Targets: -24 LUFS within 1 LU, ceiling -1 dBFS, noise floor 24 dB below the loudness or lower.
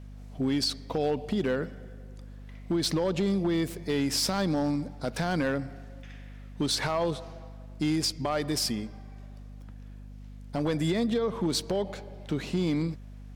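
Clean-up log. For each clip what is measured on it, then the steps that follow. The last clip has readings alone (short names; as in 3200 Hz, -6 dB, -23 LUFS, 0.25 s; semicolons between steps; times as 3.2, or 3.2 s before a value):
clipped 0.7%; flat tops at -20.5 dBFS; hum 50 Hz; harmonics up to 250 Hz; hum level -42 dBFS; loudness -29.0 LUFS; peak -20.5 dBFS; loudness target -24.0 LUFS
-> clip repair -20.5 dBFS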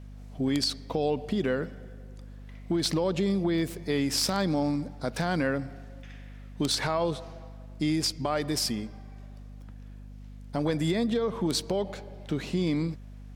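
clipped 0.0%; hum 50 Hz; harmonics up to 250 Hz; hum level -42 dBFS
-> notches 50/100/150/200/250 Hz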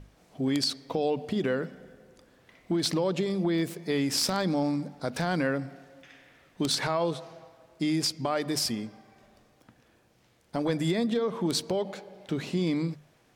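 hum none; loudness -29.0 LUFS; peak -12.0 dBFS; loudness target -24.0 LUFS
-> gain +5 dB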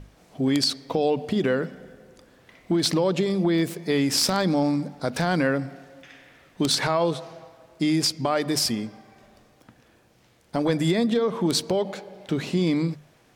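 loudness -24.0 LUFS; peak -7.0 dBFS; noise floor -59 dBFS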